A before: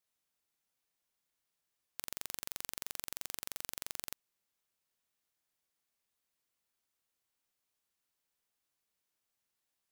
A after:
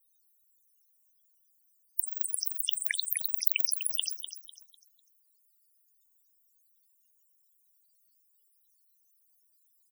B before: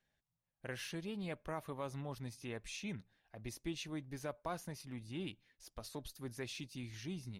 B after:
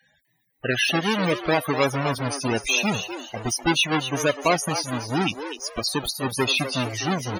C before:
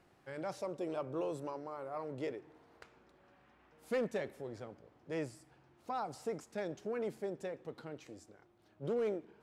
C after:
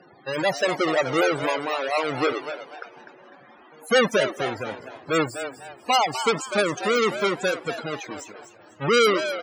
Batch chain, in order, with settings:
half-waves squared off; tilt +3 dB/oct; soft clip -6 dBFS; loudest bins only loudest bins 32; on a send: frequency-shifting echo 0.249 s, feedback 32%, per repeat +140 Hz, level -10 dB; on the sum: normalise peaks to -6 dBFS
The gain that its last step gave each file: +15.0, +20.0, +16.0 dB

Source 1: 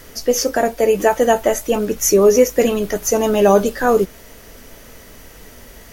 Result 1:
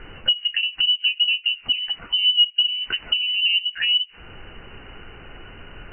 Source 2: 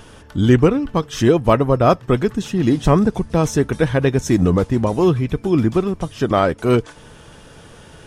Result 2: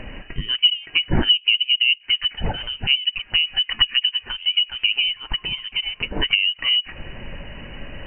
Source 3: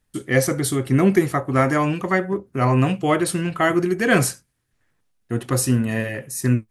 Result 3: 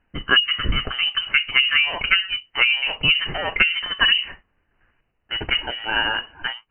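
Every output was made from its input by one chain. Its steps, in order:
treble ducked by the level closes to 720 Hz, closed at -12 dBFS; elliptic high-pass 450 Hz, stop band 70 dB; treble ducked by the level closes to 580 Hz, closed at -16.5 dBFS; inverted band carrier 3400 Hz; tilt -4 dB/oct; match loudness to -19 LUFS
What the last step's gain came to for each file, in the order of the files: +5.0, +9.5, +11.5 dB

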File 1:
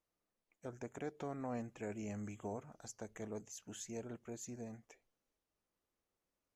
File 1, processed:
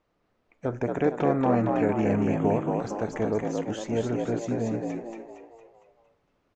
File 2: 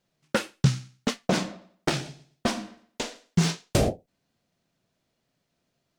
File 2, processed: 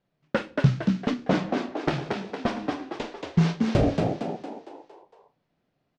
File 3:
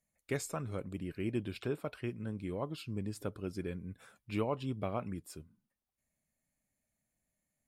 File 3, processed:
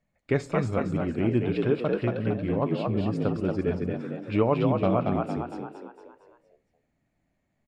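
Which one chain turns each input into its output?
LPF 4700 Hz 12 dB/oct; high shelf 3200 Hz -11.5 dB; frequency-shifting echo 0.229 s, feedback 48%, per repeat +58 Hz, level -3.5 dB; shoebox room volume 460 m³, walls furnished, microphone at 0.34 m; match loudness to -27 LUFS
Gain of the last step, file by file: +18.5, +0.5, +11.0 dB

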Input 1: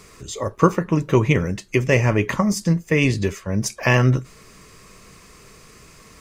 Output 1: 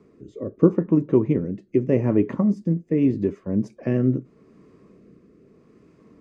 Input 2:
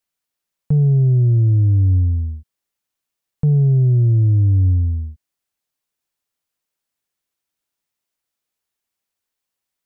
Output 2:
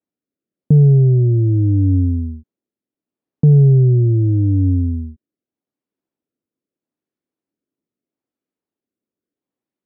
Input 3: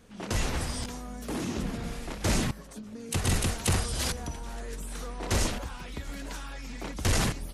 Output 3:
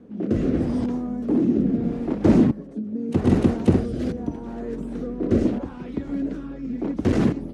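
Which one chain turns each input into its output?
band-pass 280 Hz, Q 1.9; rotary speaker horn 0.8 Hz; normalise peaks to -3 dBFS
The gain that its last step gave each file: +5.5, +14.0, +19.0 dB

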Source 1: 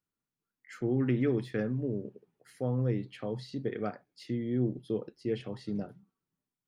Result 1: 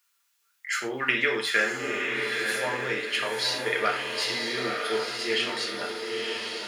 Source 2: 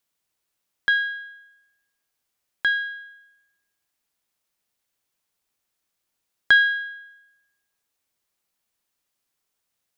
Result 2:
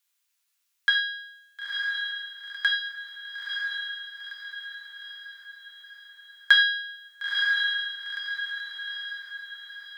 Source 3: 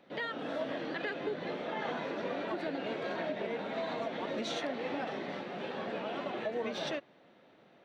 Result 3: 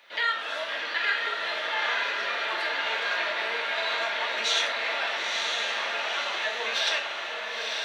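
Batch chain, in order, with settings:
HPF 1500 Hz 12 dB/oct; on a send: diffused feedback echo 0.958 s, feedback 49%, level -3 dB; on the sum: non-linear reverb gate 0.14 s falling, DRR 1 dB; match loudness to -27 LUFS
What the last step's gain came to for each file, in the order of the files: +20.5, +1.5, +12.5 dB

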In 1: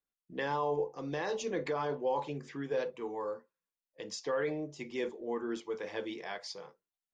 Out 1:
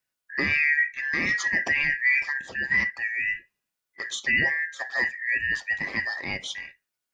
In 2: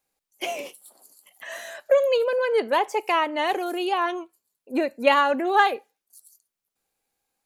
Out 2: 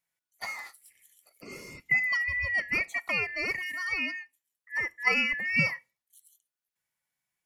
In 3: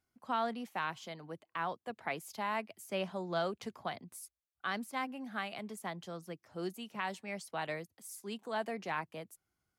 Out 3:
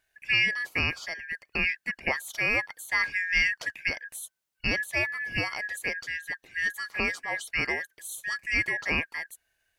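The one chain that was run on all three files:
four-band scrambler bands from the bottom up 2143; normalise peaks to -12 dBFS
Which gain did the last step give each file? +9.5, -7.0, +9.5 dB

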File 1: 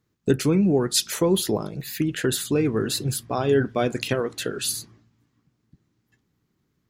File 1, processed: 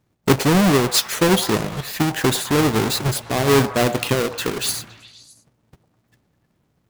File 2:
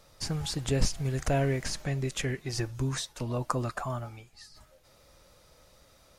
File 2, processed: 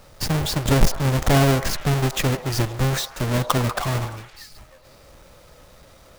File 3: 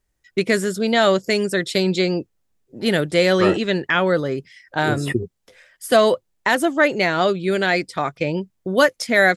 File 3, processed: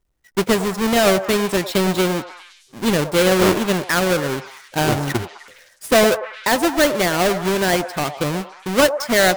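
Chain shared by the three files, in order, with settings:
half-waves squared off; delay with a stepping band-pass 0.103 s, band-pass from 670 Hz, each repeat 0.7 oct, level -8 dB; normalise peaks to -6 dBFS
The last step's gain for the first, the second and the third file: +1.0, +5.5, -3.5 dB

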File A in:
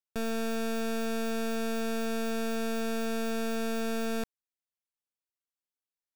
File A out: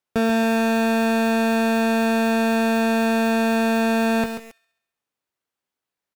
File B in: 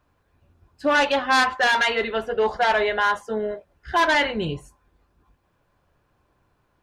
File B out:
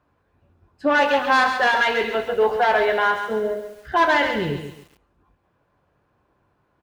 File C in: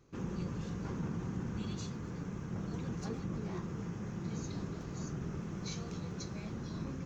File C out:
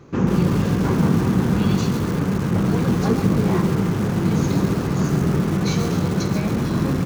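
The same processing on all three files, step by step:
HPF 95 Hz 6 dB/oct; high shelf 3300 Hz -11.5 dB; doubler 21 ms -12 dB; thin delay 68 ms, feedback 57%, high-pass 2000 Hz, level -13 dB; lo-fi delay 0.136 s, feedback 35%, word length 8-bit, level -8 dB; match loudness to -20 LUFS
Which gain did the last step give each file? +14.5, +2.0, +21.0 dB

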